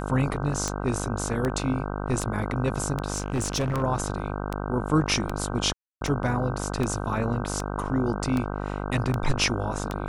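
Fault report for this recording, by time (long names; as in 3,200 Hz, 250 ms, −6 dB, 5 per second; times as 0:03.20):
mains buzz 50 Hz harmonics 31 −31 dBFS
scratch tick 78 rpm −14 dBFS
0:03.14–0:03.82: clipping −22 dBFS
0:05.73–0:06.01: drop-out 282 ms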